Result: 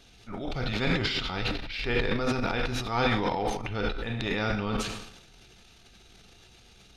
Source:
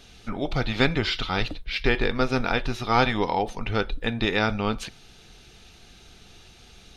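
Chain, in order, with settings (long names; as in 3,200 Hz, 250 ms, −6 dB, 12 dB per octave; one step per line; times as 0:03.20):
coupled-rooms reverb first 0.82 s, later 2.1 s, DRR 6.5 dB
transient designer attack −6 dB, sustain +12 dB
level −6.5 dB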